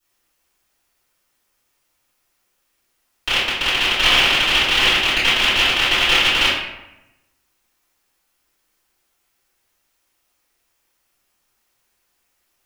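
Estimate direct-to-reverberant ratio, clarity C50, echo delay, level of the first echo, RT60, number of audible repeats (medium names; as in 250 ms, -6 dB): -14.5 dB, 1.0 dB, no echo, no echo, 0.90 s, no echo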